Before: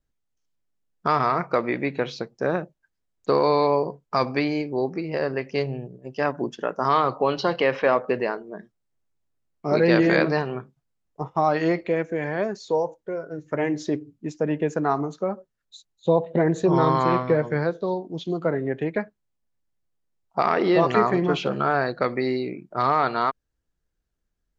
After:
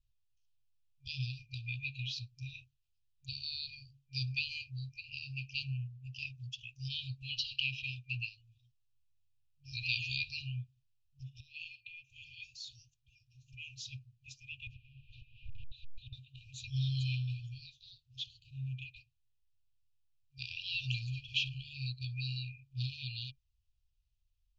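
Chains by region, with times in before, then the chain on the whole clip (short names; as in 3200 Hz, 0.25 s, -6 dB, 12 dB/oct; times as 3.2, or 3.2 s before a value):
11.4–12.1 tone controls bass -12 dB, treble -15 dB + compressor 4:1, threshold -23 dBFS
14.67–16.13 zero-crossing step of -31 dBFS + LPF 2100 Hz 24 dB/oct + compressor 10:1, threshold -28 dBFS
whole clip: FFT band-reject 130–2400 Hz; LPF 4400 Hz 12 dB/oct; gain +1 dB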